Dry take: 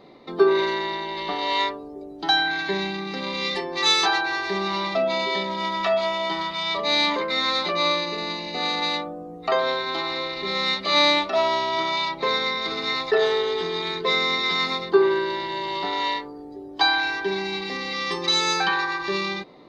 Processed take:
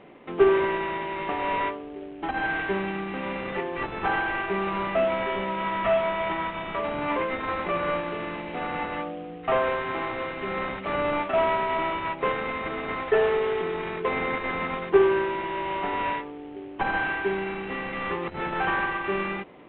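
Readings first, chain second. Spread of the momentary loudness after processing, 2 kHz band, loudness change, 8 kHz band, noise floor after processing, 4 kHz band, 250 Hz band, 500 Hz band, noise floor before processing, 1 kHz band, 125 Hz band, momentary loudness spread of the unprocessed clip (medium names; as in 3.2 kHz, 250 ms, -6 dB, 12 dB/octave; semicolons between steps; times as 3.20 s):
9 LU, -3.5 dB, -4.0 dB, under -40 dB, -39 dBFS, -18.0 dB, -1.0 dB, -1.0 dB, -39 dBFS, -2.0 dB, +1.5 dB, 9 LU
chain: CVSD coder 16 kbps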